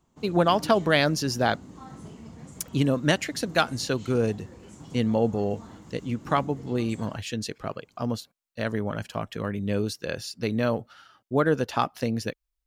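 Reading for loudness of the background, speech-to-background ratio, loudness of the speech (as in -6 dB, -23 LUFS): -45.0 LUFS, 18.0 dB, -27.0 LUFS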